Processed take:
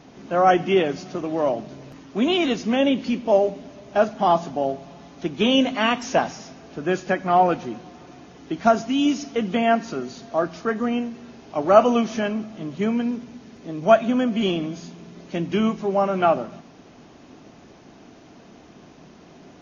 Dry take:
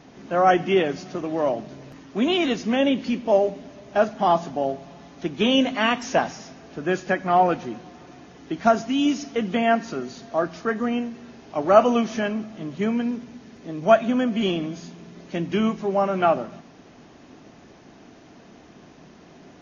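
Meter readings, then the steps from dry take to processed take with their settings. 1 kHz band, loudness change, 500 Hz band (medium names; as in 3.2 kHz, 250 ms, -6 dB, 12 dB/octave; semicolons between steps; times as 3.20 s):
+1.0 dB, +1.0 dB, +1.0 dB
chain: peaking EQ 1.8 kHz -3 dB 0.37 oct; trim +1 dB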